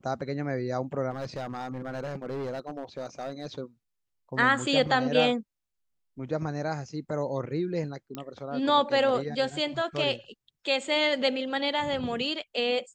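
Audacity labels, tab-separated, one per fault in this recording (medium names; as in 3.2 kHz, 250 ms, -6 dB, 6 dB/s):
1.110000	3.470000	clipped -30 dBFS
8.150000	8.150000	pop -21 dBFS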